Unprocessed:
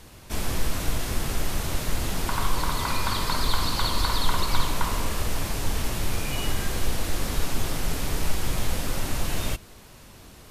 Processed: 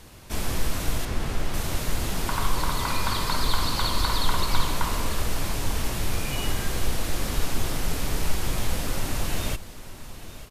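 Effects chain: 1.05–1.54 s: low-pass 3.3 kHz 6 dB/octave; on a send: delay 894 ms -15 dB

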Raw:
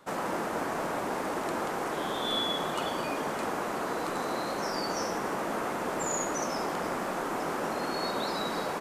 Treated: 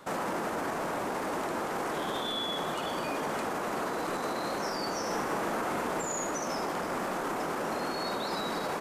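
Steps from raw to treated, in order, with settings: peak limiter -30 dBFS, peak gain reduction 11.5 dB; 5.05–6.01 s: doubling 42 ms -5.5 dB; trim +5.5 dB

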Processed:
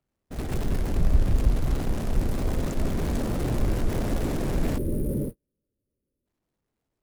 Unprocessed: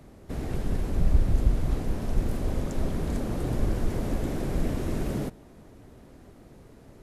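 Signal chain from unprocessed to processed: jump at every zero crossing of -30.5 dBFS; time-frequency box 4.78–6.26 s, 620–8700 Hz -20 dB; gate -28 dBFS, range -47 dB

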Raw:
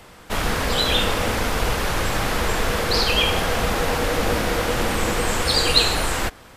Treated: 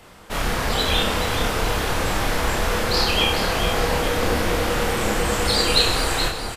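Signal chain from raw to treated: doubling 29 ms -2 dB; echo whose repeats swap between lows and highs 213 ms, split 1.2 kHz, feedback 68%, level -5.5 dB; trim -3 dB

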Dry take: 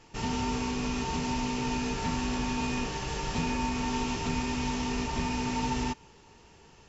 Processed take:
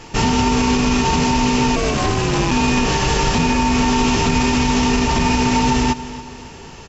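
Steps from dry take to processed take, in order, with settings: 1.75–2.50 s: ring modulator 230 Hz -> 87 Hz; feedback delay 279 ms, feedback 46%, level -20 dB; loudness maximiser +24.5 dB; trim -6.5 dB

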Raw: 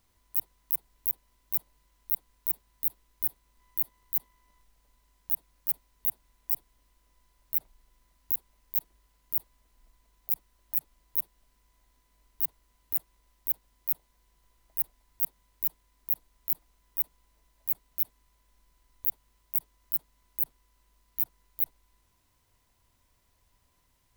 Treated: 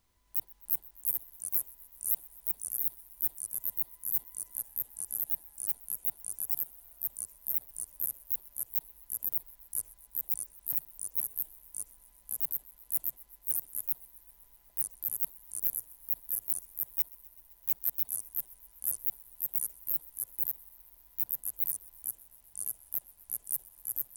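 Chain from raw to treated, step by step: ever faster or slower copies 273 ms, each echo -3 st, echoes 3; 16.98–18.00 s: waveshaping leveller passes 1; thinning echo 128 ms, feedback 80%, level -22.5 dB; trim -3.5 dB

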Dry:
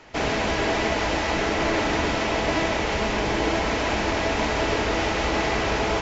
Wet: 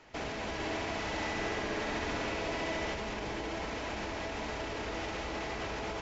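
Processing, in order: peak limiter -20 dBFS, peak gain reduction 10 dB; 0.53–2.94 s: flutter echo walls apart 11.5 m, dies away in 1.2 s; trim -9 dB

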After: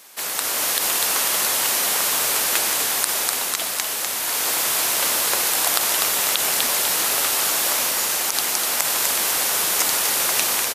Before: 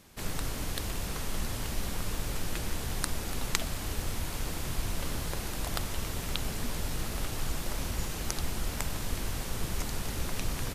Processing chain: high-pass 640 Hz 12 dB/octave; treble shelf 7.5 kHz +8.5 dB; level rider gain up to 5.5 dB; on a send: frequency-shifting echo 248 ms, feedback 50%, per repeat -58 Hz, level -8 dB; on the sum: loudness maximiser +11.5 dB; trim -1 dB

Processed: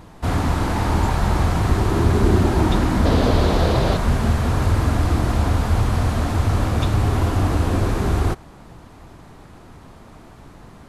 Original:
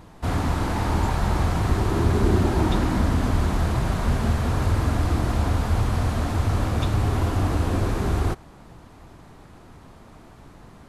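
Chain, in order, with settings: 3.05–3.97 s: ten-band graphic EQ 500 Hz +11 dB, 4 kHz +9 dB, 8 kHz -3 dB; trim +3.5 dB

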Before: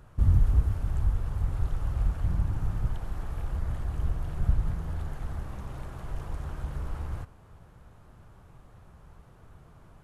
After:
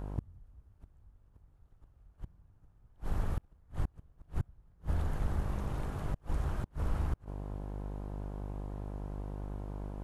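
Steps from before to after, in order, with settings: mains buzz 50 Hz, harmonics 21, -41 dBFS -6 dB/octave; inverted gate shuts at -22 dBFS, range -35 dB; trim +1 dB

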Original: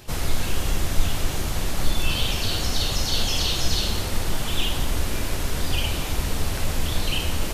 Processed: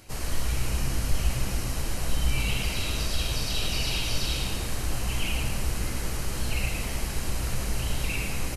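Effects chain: treble shelf 8.1 kHz +4.5 dB; band-stop 4 kHz, Q 8.2; tape speed -12%; on a send: frequency-shifting echo 107 ms, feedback 41%, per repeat -68 Hz, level -5 dB; on the sum: trim -6.5 dB

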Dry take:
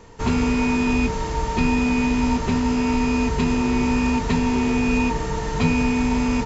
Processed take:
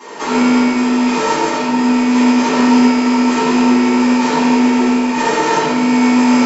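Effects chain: high-pass 310 Hz 24 dB/octave; compressor with a negative ratio -29 dBFS, ratio -0.5; peak limiter -21 dBFS, peak gain reduction 5.5 dB; simulated room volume 970 m³, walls mixed, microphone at 9.8 m; trim +1 dB

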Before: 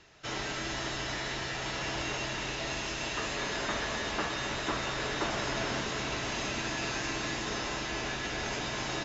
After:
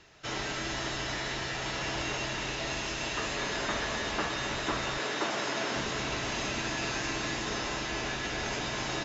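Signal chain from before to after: 4.98–5.76 s: high-pass 210 Hz 12 dB/octave; trim +1 dB

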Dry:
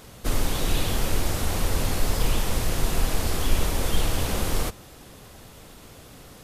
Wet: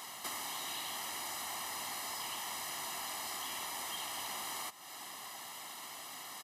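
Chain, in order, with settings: high-pass 620 Hz 12 dB/octave; comb 1 ms, depth 78%; compression 4:1, threshold -43 dBFS, peak gain reduction 14 dB; trim +2 dB

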